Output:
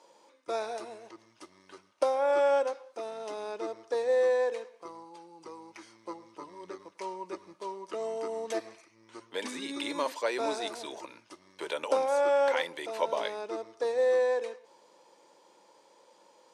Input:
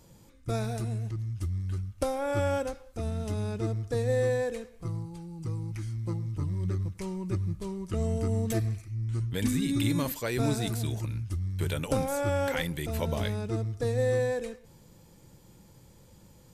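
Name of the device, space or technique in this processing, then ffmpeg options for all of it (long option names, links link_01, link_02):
phone speaker on a table: -af "highpass=frequency=370:width=0.5412,highpass=frequency=370:width=1.3066,equalizer=frequency=580:width_type=q:width=4:gain=5,equalizer=frequency=960:width_type=q:width=4:gain=10,equalizer=frequency=7500:width_type=q:width=4:gain=-8,lowpass=frequency=8300:width=0.5412,lowpass=frequency=8300:width=1.3066"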